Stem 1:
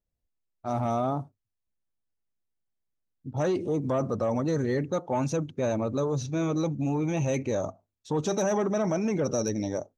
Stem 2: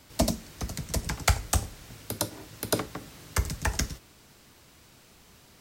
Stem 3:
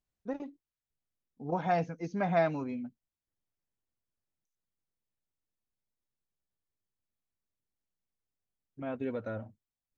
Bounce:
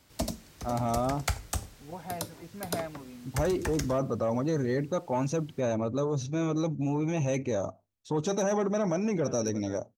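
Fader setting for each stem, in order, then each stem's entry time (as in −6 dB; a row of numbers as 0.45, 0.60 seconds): −1.5, −7.0, −9.5 decibels; 0.00, 0.00, 0.40 seconds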